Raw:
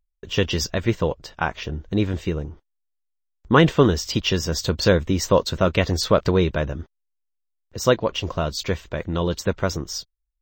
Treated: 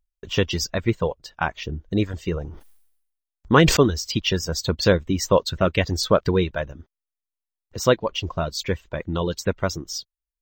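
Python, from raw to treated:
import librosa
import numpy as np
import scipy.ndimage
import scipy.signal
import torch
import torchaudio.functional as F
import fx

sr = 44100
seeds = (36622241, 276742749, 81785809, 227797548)

y = fx.dereverb_blind(x, sr, rt60_s=1.6)
y = fx.sustainer(y, sr, db_per_s=68.0, at=(2.23, 3.77))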